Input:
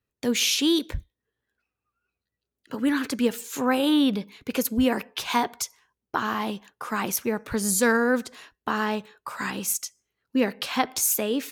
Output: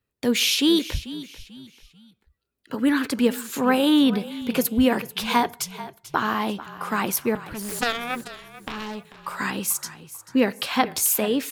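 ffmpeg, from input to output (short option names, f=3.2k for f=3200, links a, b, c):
-filter_complex "[0:a]equalizer=f=6.3k:w=3.2:g=-5.5,asettb=1/sr,asplit=3[a][b][c];[a]atrim=end=7.354[d];[b]atrim=start=7.35:end=9.14,asetpts=PTS-STARTPTS,afade=t=in:d=0.004:c=qsin,afade=t=out:st=1.786:d=0.004:c=qsin,aeval=exprs='0.376*(cos(1*acos(clip(val(0)/0.376,-1,1)))-cos(1*PI/2))+0.15*(cos(3*acos(clip(val(0)/0.376,-1,1)))-cos(3*PI/2))+0.0168*(cos(7*acos(clip(val(0)/0.376,-1,1)))-cos(7*PI/2))':c=same[e];[c]atrim=start=9.136[f];[d][e]acrossfade=d=0.004:c1=hsin:c2=qsin[g];[g][f]acrossfade=d=0.004:c1=qsin:c2=hsin,asplit=2[h][i];[i]asplit=3[j][k][l];[j]adelay=440,afreqshift=-36,volume=-15.5dB[m];[k]adelay=880,afreqshift=-72,volume=-24.6dB[n];[l]adelay=1320,afreqshift=-108,volume=-33.7dB[o];[m][n][o]amix=inputs=3:normalize=0[p];[h][p]amix=inputs=2:normalize=0,volume=3dB"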